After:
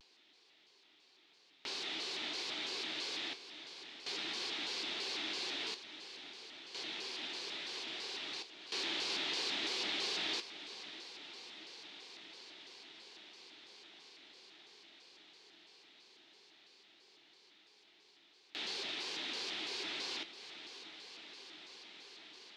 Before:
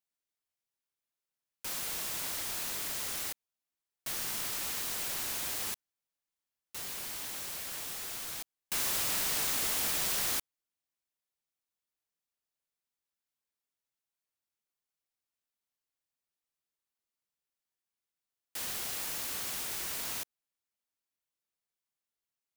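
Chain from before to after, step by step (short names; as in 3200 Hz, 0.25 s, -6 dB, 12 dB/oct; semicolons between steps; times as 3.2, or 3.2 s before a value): flange 0.2 Hz, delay 8 ms, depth 7.7 ms, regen -69%; soft clip -34.5 dBFS, distortion -14 dB; speaker cabinet 340–4400 Hz, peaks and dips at 350 Hz +9 dB, 570 Hz -8 dB, 810 Hz -3 dB, 1200 Hz -10 dB, 1700 Hz -6 dB, 4000 Hz +6 dB; notch 570 Hz, Q 15; on a send: diffused feedback echo 0.626 s, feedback 62%, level -13.5 dB; on the sum: upward compressor, threshold -53 dBFS; shaped vibrato square 3 Hz, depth 160 cents; gain +8 dB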